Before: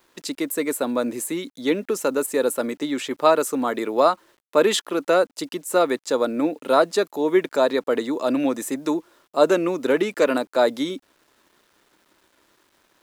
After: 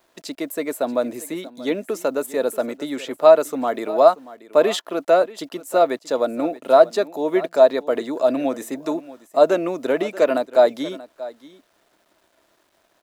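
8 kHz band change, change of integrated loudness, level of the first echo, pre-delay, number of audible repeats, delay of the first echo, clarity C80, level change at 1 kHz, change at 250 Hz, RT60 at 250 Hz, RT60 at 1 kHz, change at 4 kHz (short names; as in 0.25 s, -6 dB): -6.0 dB, +2.5 dB, -17.5 dB, none, 1, 0.633 s, none, +2.0 dB, -2.0 dB, none, none, -3.0 dB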